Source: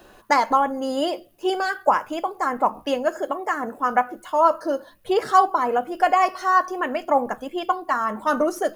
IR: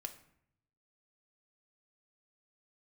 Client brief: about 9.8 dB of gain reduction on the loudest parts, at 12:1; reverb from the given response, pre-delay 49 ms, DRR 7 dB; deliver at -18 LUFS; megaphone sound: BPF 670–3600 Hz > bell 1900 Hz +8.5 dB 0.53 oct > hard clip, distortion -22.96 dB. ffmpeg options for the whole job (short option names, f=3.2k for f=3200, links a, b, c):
-filter_complex "[0:a]acompressor=threshold=-21dB:ratio=12,asplit=2[a][b];[1:a]atrim=start_sample=2205,adelay=49[c];[b][c]afir=irnorm=-1:irlink=0,volume=-4dB[d];[a][d]amix=inputs=2:normalize=0,highpass=670,lowpass=3.6k,equalizer=f=1.9k:t=o:w=0.53:g=8.5,asoftclip=type=hard:threshold=-16.5dB,volume=10dB"